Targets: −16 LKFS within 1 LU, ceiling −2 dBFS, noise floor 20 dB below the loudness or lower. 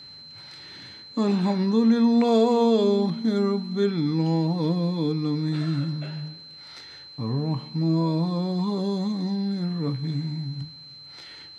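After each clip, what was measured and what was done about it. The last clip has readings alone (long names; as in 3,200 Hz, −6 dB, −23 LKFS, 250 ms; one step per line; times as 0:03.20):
interfering tone 4,100 Hz; level of the tone −42 dBFS; integrated loudness −24.0 LKFS; sample peak −9.5 dBFS; target loudness −16.0 LKFS
→ notch filter 4,100 Hz, Q 30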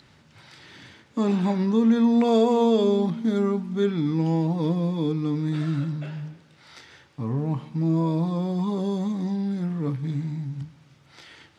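interfering tone none found; integrated loudness −24.5 LKFS; sample peak −9.5 dBFS; target loudness −16.0 LKFS
→ level +8.5 dB
brickwall limiter −2 dBFS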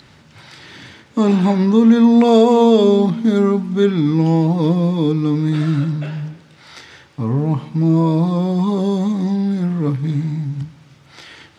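integrated loudness −16.0 LKFS; sample peak −2.0 dBFS; background noise floor −48 dBFS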